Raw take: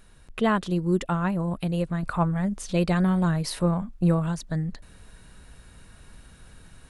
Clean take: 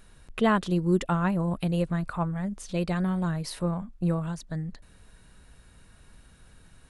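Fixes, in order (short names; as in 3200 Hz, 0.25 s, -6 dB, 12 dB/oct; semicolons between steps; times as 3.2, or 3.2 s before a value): gain correction -5 dB, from 2.03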